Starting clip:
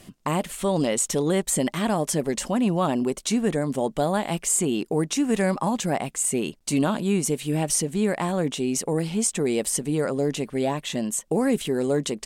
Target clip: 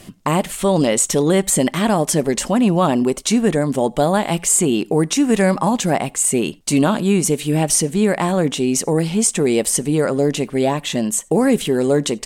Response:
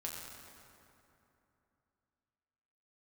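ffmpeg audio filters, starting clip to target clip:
-filter_complex "[0:a]asplit=2[s0][s1];[1:a]atrim=start_sample=2205,atrim=end_sample=6174,asetrate=61740,aresample=44100[s2];[s1][s2]afir=irnorm=-1:irlink=0,volume=0.188[s3];[s0][s3]amix=inputs=2:normalize=0,volume=2.11"

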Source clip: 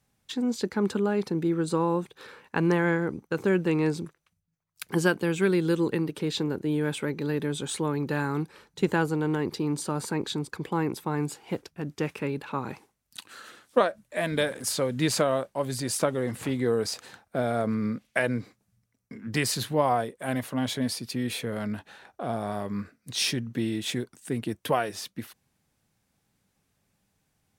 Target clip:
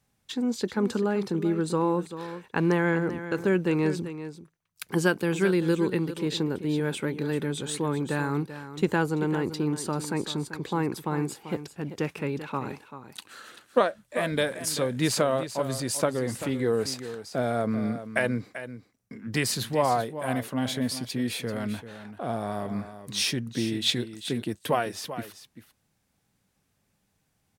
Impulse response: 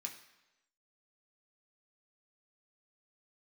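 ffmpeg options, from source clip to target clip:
-filter_complex "[0:a]asettb=1/sr,asplit=3[s0][s1][s2];[s0]atrim=end=23.824[s3];[s1]atrim=start=23.82:end=24.31,asetpts=PTS-STARTPTS,afade=t=in:d=0.004:c=qsin,afade=t=out:st=0.486:d=0.004:c=qsin,equalizer=f=4000:w=1.7:g=11.5[s4];[s2]atrim=start=24.306[s5];[s3][s4]acrossfade=d=0.004:c1=hsin:c2=qsin[s6];[s6][s5]acrossfade=d=0.004:c1=qsin:c2=hsin,asplit=2[s7][s8];[s8]aecho=0:1:389:0.251[s9];[s7][s9]amix=inputs=2:normalize=0"

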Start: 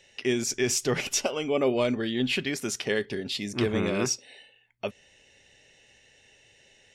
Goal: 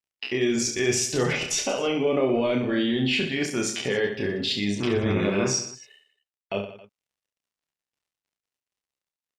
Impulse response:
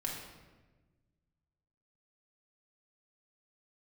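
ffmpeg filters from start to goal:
-filter_complex "[0:a]asplit=2[s0][s1];[s1]acompressor=threshold=0.0178:ratio=6,volume=0.794[s2];[s0][s2]amix=inputs=2:normalize=0,highshelf=f=7200:g=-6,atempo=0.74,alimiter=limit=0.112:level=0:latency=1:release=15,aeval=exprs='sgn(val(0))*max(abs(val(0))-0.00422,0)':c=same,afftdn=nr=17:nf=-47,asplit=2[s3][s4];[s4]aecho=0:1:30|69|119.7|185.6|271.3:0.631|0.398|0.251|0.158|0.1[s5];[s3][s5]amix=inputs=2:normalize=0,volume=1.33"

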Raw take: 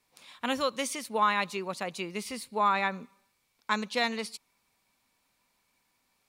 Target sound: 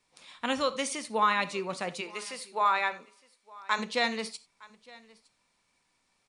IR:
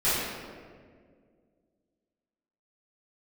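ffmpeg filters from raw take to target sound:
-filter_complex "[0:a]asplit=3[s0][s1][s2];[s0]afade=t=out:st=2:d=0.02[s3];[s1]highpass=470,afade=t=in:st=2:d=0.02,afade=t=out:st=3.78:d=0.02[s4];[s2]afade=t=in:st=3.78:d=0.02[s5];[s3][s4][s5]amix=inputs=3:normalize=0,aecho=1:1:912:0.0708,asplit=2[s6][s7];[1:a]atrim=start_sample=2205,atrim=end_sample=4410[s8];[s7][s8]afir=irnorm=-1:irlink=0,volume=0.0708[s9];[s6][s9]amix=inputs=2:normalize=0" -ar 22050 -c:a mp2 -b:a 128k

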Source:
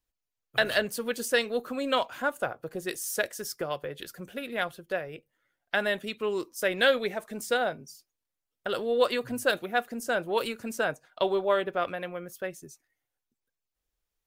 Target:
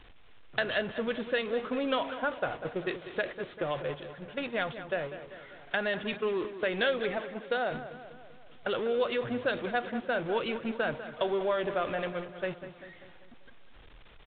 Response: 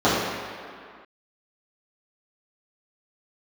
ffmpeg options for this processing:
-filter_complex "[0:a]aeval=exprs='val(0)+0.5*0.0237*sgn(val(0))':c=same,asettb=1/sr,asplit=3[s0][s1][s2];[s0]atrim=end=7.174[s3];[s1]atrim=start=7.17:end=7.71,asetpts=PTS-STARTPTS,afade=t=in:d=0.004:c=qsin,afade=t=out:st=0.536:d=0.004:c=qsin,highpass=220[s4];[s2]atrim=start=7.706[s5];[s3][s4]acrossfade=d=0.004:c1=hsin:c2=qsin[s6];[s6][s5]acrossfade=d=0.004:c1=qsin:c2=hsin,agate=range=0.251:threshold=0.0251:ratio=16:detection=peak,acompressor=threshold=0.0316:ratio=2,asplit=2[s7][s8];[s8]adelay=196,lowpass=f=2700:p=1,volume=0.266,asplit=2[s9][s10];[s10]adelay=196,lowpass=f=2700:p=1,volume=0.55,asplit=2[s11][s12];[s12]adelay=196,lowpass=f=2700:p=1,volume=0.55,asplit=2[s13][s14];[s14]adelay=196,lowpass=f=2700:p=1,volume=0.55,asplit=2[s15][s16];[s16]adelay=196,lowpass=f=2700:p=1,volume=0.55,asplit=2[s17][s18];[s18]adelay=196,lowpass=f=2700:p=1,volume=0.55[s19];[s7][s9][s11][s13][s15][s17][s19]amix=inputs=7:normalize=0" -ar 8000 -c:a pcm_alaw

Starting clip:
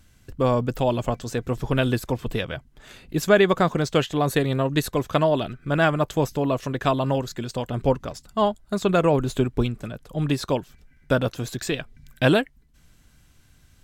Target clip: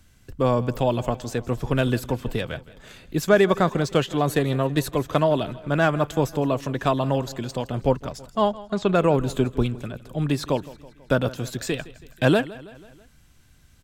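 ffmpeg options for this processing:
-filter_complex "[0:a]acrossover=split=150|1500[s0][s1][s2];[s2]asoftclip=type=tanh:threshold=0.0708[s3];[s0][s1][s3]amix=inputs=3:normalize=0,asplit=3[s4][s5][s6];[s4]afade=t=out:st=8.51:d=0.02[s7];[s5]lowpass=5300,afade=t=in:st=8.51:d=0.02,afade=t=out:st=8.94:d=0.02[s8];[s6]afade=t=in:st=8.94:d=0.02[s9];[s7][s8][s9]amix=inputs=3:normalize=0,aecho=1:1:163|326|489|652:0.112|0.0606|0.0327|0.0177"

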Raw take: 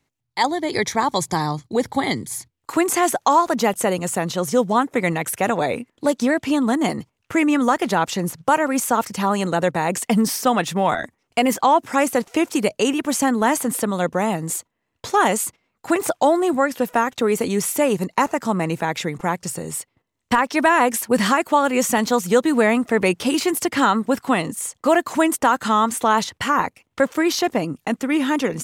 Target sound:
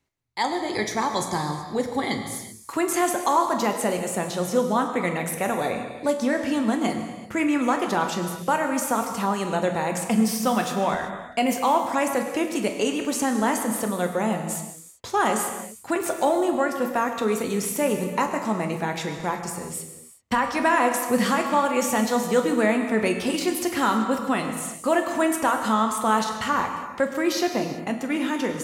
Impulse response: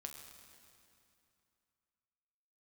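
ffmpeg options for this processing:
-filter_complex "[1:a]atrim=start_sample=2205,afade=t=out:st=0.44:d=0.01,atrim=end_sample=19845[s0];[0:a][s0]afir=irnorm=-1:irlink=0"

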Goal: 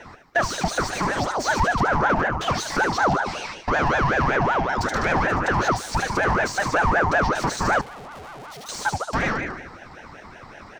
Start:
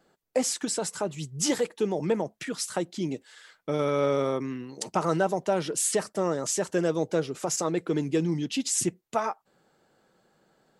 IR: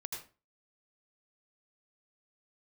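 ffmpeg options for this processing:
-filter_complex "[0:a]acompressor=threshold=0.0282:ratio=6,asplit=2[s0][s1];[s1]aecho=0:1:74|148|222|296|370|444:0.355|0.185|0.0959|0.0499|0.0259|0.0135[s2];[s0][s2]amix=inputs=2:normalize=0,asplit=2[s3][s4];[s4]highpass=f=720:p=1,volume=35.5,asoftclip=type=tanh:threshold=0.141[s5];[s3][s5]amix=inputs=2:normalize=0,lowpass=f=1000:p=1,volume=0.501,equalizer=f=315:t=o:w=0.33:g=6,equalizer=f=500:t=o:w=0.33:g=4,equalizer=f=3150:t=o:w=0.33:g=-7,equalizer=f=5000:t=o:w=0.33:g=11,equalizer=f=10000:t=o:w=0.33:g=-9,asettb=1/sr,asplit=3[s6][s7][s8];[s6]atrim=end=7.814[s9];[s7]atrim=start=7.81:end=8.69,asetpts=PTS-STARTPTS,afade=t=in:d=0.004:c=qsin,afade=t=out:st=0.876:d=0.004:c=qsin,aeval=exprs='(tanh(141*val(0)+0.75)-tanh(0.75))/141':c=same[s10];[s8]atrim=start=8.686[s11];[s9][s10]acrossfade=d=0.004:c1=hsin:c2=qsin[s12];[s12][s11]acrossfade=d=0.004:c1=qsin:c2=hsin,aeval=exprs='val(0)*sin(2*PI*810*n/s+810*0.5/5.3*sin(2*PI*5.3*n/s))':c=same,volume=2"

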